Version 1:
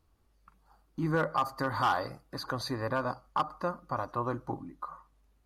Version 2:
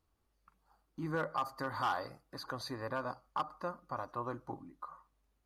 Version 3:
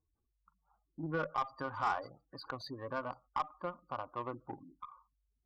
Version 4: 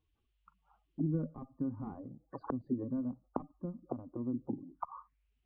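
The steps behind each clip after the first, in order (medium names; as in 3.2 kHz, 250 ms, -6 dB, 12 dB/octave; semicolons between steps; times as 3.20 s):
bass shelf 210 Hz -4.5 dB; trim -6 dB
spectral gate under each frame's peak -15 dB strong; Chebyshev shaper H 2 -16 dB, 7 -25 dB, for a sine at -22.5 dBFS; trim +1 dB
touch-sensitive low-pass 240–3100 Hz down, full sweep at -40 dBFS; trim +3.5 dB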